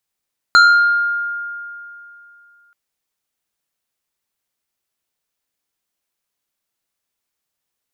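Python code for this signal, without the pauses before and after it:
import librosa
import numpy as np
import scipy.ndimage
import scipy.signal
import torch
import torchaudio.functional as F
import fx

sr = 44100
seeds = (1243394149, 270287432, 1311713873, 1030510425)

y = fx.fm2(sr, length_s=2.18, level_db=-4.5, carrier_hz=1410.0, ratio=1.94, index=0.87, index_s=1.04, decay_s=2.75, shape='exponential')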